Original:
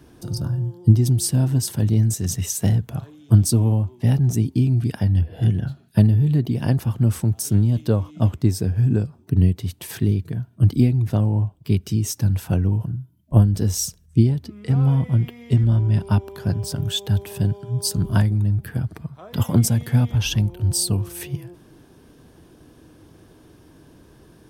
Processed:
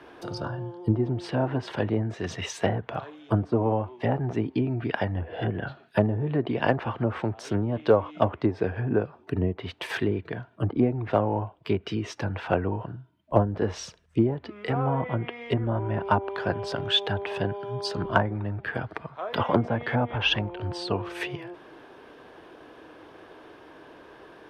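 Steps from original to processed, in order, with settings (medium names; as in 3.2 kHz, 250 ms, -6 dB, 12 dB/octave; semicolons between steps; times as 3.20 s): low-pass that closes with the level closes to 1 kHz, closed at -12.5 dBFS; three-band isolator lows -23 dB, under 410 Hz, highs -24 dB, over 3.3 kHz; in parallel at -10 dB: overload inside the chain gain 22.5 dB; on the sum: trim +7.5 dB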